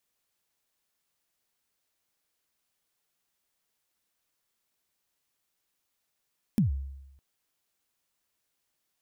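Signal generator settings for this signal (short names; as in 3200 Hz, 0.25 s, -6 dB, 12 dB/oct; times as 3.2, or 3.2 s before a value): kick drum length 0.61 s, from 240 Hz, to 68 Hz, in 0.127 s, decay 0.95 s, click on, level -18 dB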